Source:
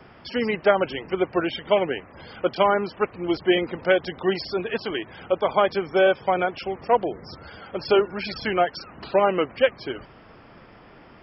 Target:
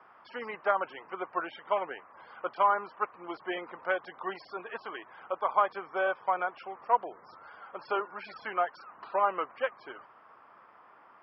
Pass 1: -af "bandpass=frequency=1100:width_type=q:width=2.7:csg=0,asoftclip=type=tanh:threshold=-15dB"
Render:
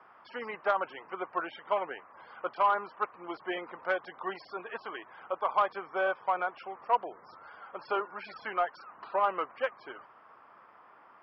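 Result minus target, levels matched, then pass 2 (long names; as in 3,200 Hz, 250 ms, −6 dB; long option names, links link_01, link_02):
soft clipping: distortion +18 dB
-af "bandpass=frequency=1100:width_type=q:width=2.7:csg=0,asoftclip=type=tanh:threshold=-4.5dB"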